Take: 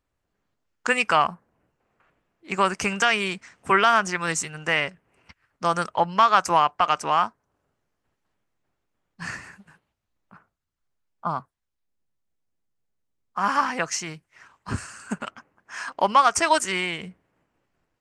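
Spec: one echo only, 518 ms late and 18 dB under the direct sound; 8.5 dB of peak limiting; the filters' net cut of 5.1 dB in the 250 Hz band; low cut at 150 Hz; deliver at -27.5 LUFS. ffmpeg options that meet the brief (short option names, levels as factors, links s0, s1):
-af "highpass=150,equalizer=f=250:t=o:g=-6.5,alimiter=limit=0.224:level=0:latency=1,aecho=1:1:518:0.126,volume=0.944"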